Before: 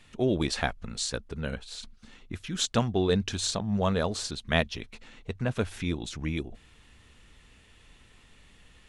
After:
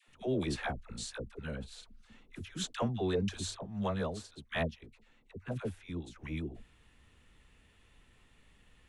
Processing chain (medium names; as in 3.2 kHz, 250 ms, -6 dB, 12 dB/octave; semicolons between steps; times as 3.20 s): peaking EQ 5.2 kHz -5.5 dB 1.3 oct; phase dispersion lows, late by 78 ms, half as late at 620 Hz; 3.56–6.16 s: upward expansion 1.5:1, over -40 dBFS; trim -6.5 dB